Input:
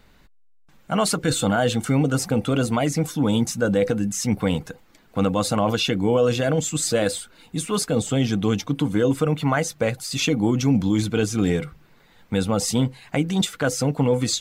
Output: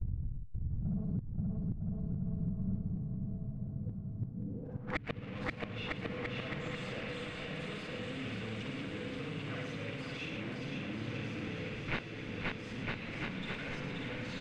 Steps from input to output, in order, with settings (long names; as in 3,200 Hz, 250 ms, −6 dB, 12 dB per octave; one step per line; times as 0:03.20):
every overlapping window played backwards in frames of 128 ms
in parallel at −4.5 dB: fuzz pedal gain 51 dB, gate −59 dBFS
on the sum: low-pass filter sweep 110 Hz → 2,500 Hz, 0:04.25–0:05.01
single-tap delay 110 ms −6 dB
dynamic equaliser 880 Hz, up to −7 dB, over −31 dBFS, Q 0.93
gate with flip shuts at −16 dBFS, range −33 dB
on a send: bouncing-ball delay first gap 530 ms, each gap 0.8×, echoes 5
on the sum: downward compressor 4 to 1, threshold −40 dBFS, peak gain reduction 16.5 dB
slow-attack reverb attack 1,830 ms, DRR 4 dB
level +5 dB